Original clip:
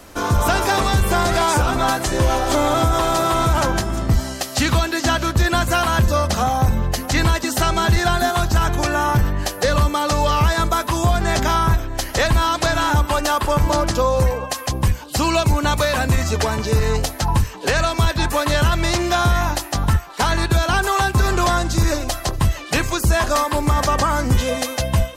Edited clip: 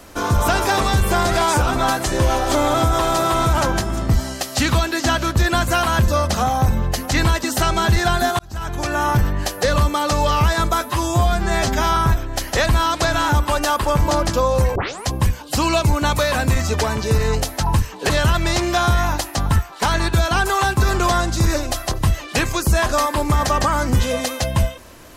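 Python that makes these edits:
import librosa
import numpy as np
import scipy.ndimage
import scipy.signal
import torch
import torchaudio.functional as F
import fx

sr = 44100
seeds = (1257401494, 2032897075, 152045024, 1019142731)

y = fx.edit(x, sr, fx.fade_in_span(start_s=8.39, length_s=0.66),
    fx.stretch_span(start_s=10.81, length_s=0.77, factor=1.5),
    fx.tape_start(start_s=14.37, length_s=0.31),
    fx.cut(start_s=17.71, length_s=0.76), tone=tone)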